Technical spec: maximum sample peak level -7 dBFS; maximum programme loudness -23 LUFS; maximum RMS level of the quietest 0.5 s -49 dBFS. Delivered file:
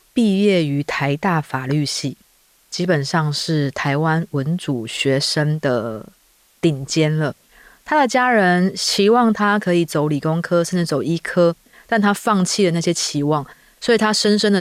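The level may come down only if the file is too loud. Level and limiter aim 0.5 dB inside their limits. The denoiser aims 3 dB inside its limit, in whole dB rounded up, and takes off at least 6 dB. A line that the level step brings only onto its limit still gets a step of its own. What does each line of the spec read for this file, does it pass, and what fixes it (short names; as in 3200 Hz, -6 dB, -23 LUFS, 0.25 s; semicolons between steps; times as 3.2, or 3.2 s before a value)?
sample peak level -6.0 dBFS: fail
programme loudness -18.0 LUFS: fail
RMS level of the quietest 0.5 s -56 dBFS: OK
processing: gain -5.5 dB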